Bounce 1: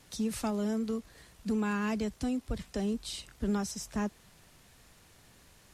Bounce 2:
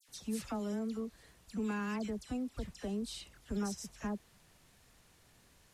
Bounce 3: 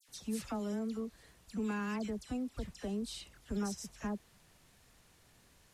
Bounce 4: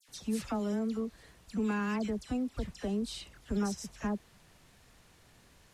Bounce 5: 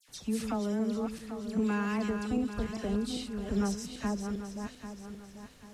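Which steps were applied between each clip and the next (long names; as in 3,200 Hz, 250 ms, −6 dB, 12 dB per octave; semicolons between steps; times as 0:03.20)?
all-pass dispersion lows, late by 85 ms, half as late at 2,100 Hz; level −5.5 dB
no processing that can be heard
high-shelf EQ 6,600 Hz −5.5 dB; level +4.5 dB
feedback delay that plays each chunk backwards 396 ms, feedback 59%, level −6.5 dB; level +1 dB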